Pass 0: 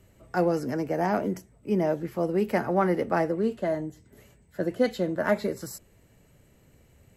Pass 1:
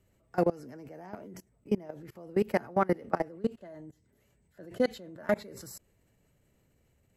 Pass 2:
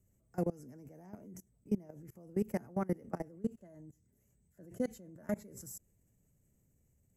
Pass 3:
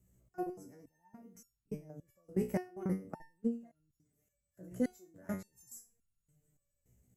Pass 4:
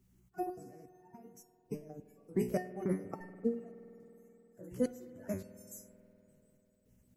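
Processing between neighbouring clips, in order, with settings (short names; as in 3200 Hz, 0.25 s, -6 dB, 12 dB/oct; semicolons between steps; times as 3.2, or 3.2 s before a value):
level quantiser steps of 23 dB
EQ curve 200 Hz 0 dB, 320 Hz -5 dB, 1300 Hz -13 dB, 2100 Hz -11 dB, 4100 Hz -19 dB, 6300 Hz +2 dB; gain -2.5 dB
stepped resonator 3.5 Hz 61–1400 Hz; gain +10 dB
bin magnitudes rounded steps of 30 dB; spring tank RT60 3.6 s, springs 49 ms, chirp 75 ms, DRR 13.5 dB; gain +1.5 dB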